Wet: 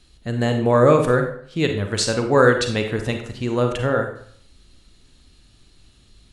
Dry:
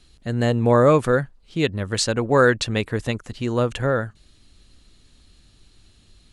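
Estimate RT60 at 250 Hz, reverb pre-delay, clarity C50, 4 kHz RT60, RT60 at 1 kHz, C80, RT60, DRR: 0.60 s, 35 ms, 6.5 dB, 0.45 s, 0.65 s, 10.0 dB, 0.60 s, 4.5 dB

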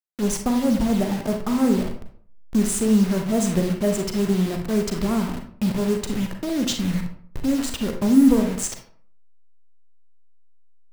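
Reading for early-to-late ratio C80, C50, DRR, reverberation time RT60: 11.0 dB, 6.5 dB, 4.0 dB, 0.55 s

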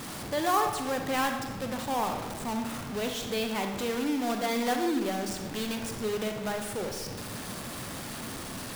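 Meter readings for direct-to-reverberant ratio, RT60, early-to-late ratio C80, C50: 4.0 dB, 1.2 s, 7.5 dB, 5.0 dB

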